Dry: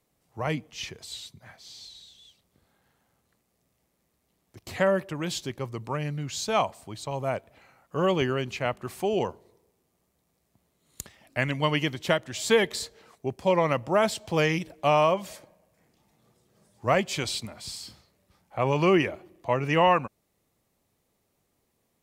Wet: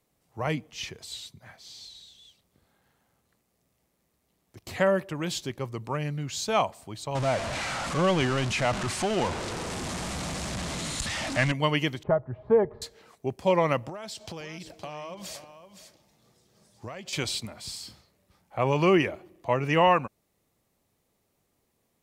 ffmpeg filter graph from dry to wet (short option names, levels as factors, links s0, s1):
-filter_complex "[0:a]asettb=1/sr,asplit=3[s0][s1][s2];[s0]atrim=end=7.154[s3];[s1]atrim=start=7.15:end=11.52,asetpts=PTS-STARTPTS,afade=t=in:d=0.004:c=qsin,afade=t=out:st=4.366:d=0.004:c=qsin,aeval=exprs='val(0)+0.5*0.0531*sgn(val(0))':c=same,lowpass=f=8700:w=0.5412,lowpass=f=8700:w=1.3066,equalizer=f=420:t=o:w=0.43:g=-8[s4];[s2]atrim=start=11.516[s5];[s3][s4]acrossfade=d=0.004:c1=hsin:c2=qsin[s6];[s6][s5]acrossfade=d=0.004:c1=qsin:c2=hsin,asettb=1/sr,asplit=3[s7][s8][s9];[s7]atrim=end=12.034[s10];[s8]atrim=start=12.03:end=12.82,asetpts=PTS-STARTPTS,afade=t=in:d=0.004:c=qsin,afade=t=out:st=0.786:d=0.004:c=qsin,lowpass=f=1100:w=0.5412,lowpass=f=1100:w=1.3066,lowshelf=f=150:t=q:w=3:g=6.5,aecho=1:1:4.8:0.47,atrim=end_sample=34839[s11];[s9]atrim=start=12.816[s12];[s10][s11]acrossfade=d=0.004:c1=hsin:c2=qsin[s13];[s13][s12]acrossfade=d=0.004:c1=qsin:c2=hsin,asettb=1/sr,asplit=3[s14][s15][s16];[s14]atrim=end=13.894[s17];[s15]atrim=start=13.89:end=17.13,asetpts=PTS-STARTPTS,afade=t=in:d=0.004:c=qsin,afade=t=out:st=3.236:d=0.004:c=qsin,equalizer=f=5000:w=1:g=7.5,acompressor=threshold=0.02:ratio=20:attack=3.2:release=140:knee=1:detection=peak,aecho=1:1:517:0.282,atrim=end_sample=142884[s18];[s16]atrim=start=17.126[s19];[s17][s18]acrossfade=d=0.004:c1=hsin:c2=qsin[s20];[s20][s19]acrossfade=d=0.004:c1=qsin:c2=hsin"